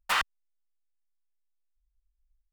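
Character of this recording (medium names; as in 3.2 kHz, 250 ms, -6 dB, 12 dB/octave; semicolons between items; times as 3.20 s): noise floor -79 dBFS; spectral tilt -1.0 dB/octave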